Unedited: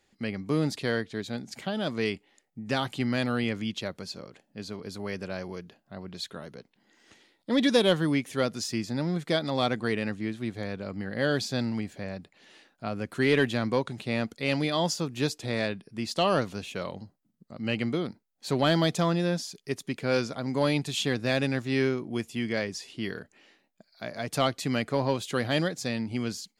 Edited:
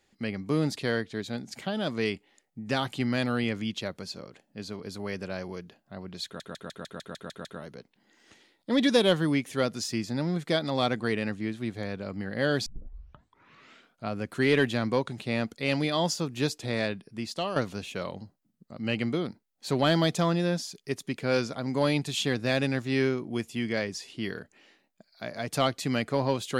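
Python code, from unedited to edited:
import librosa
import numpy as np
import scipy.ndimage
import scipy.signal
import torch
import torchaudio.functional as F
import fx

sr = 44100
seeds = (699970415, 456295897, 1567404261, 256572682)

y = fx.edit(x, sr, fx.stutter(start_s=6.25, slice_s=0.15, count=9),
    fx.tape_start(start_s=11.46, length_s=1.41),
    fx.fade_out_to(start_s=15.88, length_s=0.48, floor_db=-10.5), tone=tone)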